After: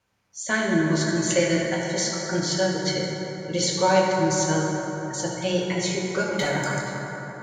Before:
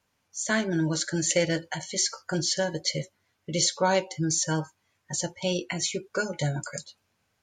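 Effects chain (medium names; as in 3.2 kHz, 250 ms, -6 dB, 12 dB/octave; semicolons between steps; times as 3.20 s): treble shelf 6.3 kHz -6.5 dB; 6.32–6.74 s: overdrive pedal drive 16 dB, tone 6.5 kHz, clips at -17 dBFS; reverberation RT60 4.3 s, pre-delay 5 ms, DRR -3.5 dB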